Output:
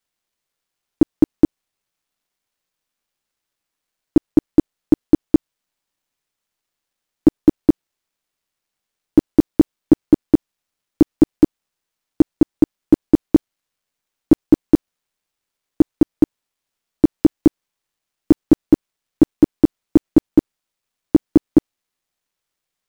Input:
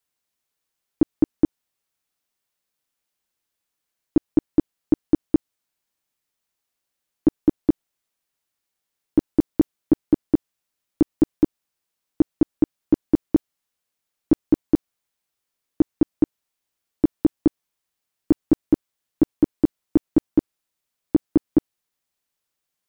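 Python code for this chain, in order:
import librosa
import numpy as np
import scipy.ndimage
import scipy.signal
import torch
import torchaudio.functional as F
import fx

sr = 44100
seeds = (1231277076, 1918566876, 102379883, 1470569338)

y = fx.dead_time(x, sr, dead_ms=0.055)
y = F.gain(torch.from_numpy(y), 5.5).numpy()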